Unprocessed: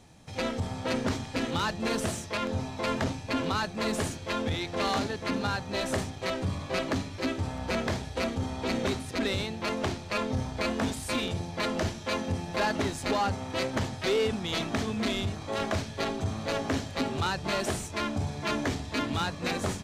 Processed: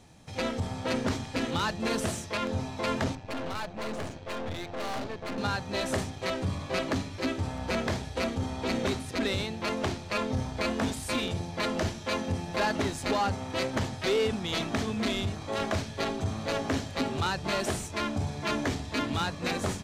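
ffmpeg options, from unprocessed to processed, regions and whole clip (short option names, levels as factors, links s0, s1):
-filter_complex "[0:a]asettb=1/sr,asplit=3[s0][s1][s2];[s0]atrim=end=3.154[s3];[s1]atrim=start=3.15:end=5.38,asetpts=PTS-STARTPTS,afade=t=in:d=0.004:c=qsin,afade=t=out:st=2.226:d=0.004:c=qsin,equalizer=f=640:t=o:w=0.87:g=6,adynamicsmooth=sensitivity=4.5:basefreq=3900,aeval=exprs='(tanh(39.8*val(0)+0.8)-tanh(0.8))/39.8':c=same[s4];[s2]atrim=start=5.376[s5];[s3][s4]acrossfade=d=0.004:c1=hsin:c2=qsin[s6];[s6][s5]acrossfade=d=0.004:c1=qsin:c2=hsin"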